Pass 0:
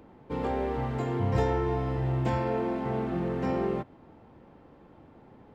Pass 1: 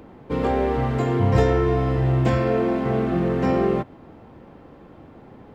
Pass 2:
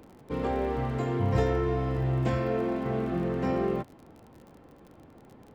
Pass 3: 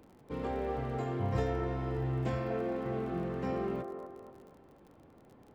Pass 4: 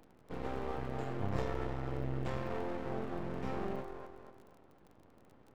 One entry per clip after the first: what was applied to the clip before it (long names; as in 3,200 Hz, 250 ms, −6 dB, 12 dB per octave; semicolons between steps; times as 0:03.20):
notch filter 880 Hz, Q 19; level +8.5 dB
surface crackle 39 per second −35 dBFS; level −7.5 dB
delay with a band-pass on its return 240 ms, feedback 43%, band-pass 690 Hz, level −5 dB; level −6.5 dB
half-wave rectification